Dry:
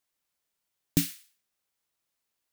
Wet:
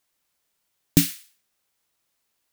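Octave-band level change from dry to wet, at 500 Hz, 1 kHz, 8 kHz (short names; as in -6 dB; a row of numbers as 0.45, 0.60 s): +7.5, +7.5, +7.5 dB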